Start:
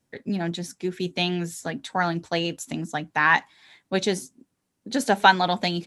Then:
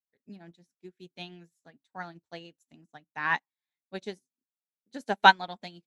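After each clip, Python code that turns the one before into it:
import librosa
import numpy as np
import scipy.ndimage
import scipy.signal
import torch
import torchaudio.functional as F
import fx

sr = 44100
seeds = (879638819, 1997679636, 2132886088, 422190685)

y = fx.upward_expand(x, sr, threshold_db=-39.0, expansion=2.5)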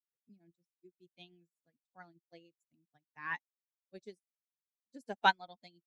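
y = fx.bin_expand(x, sr, power=1.5)
y = y * 10.0 ** (-9.0 / 20.0)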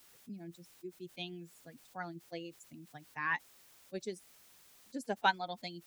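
y = fx.env_flatten(x, sr, amount_pct=50)
y = y * 10.0 ** (-3.0 / 20.0)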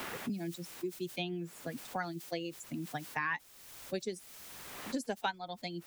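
y = fx.band_squash(x, sr, depth_pct=100)
y = y * 10.0 ** (3.5 / 20.0)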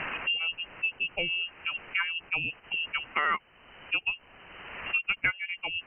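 y = fx.freq_invert(x, sr, carrier_hz=3000)
y = y * 10.0 ** (7.5 / 20.0)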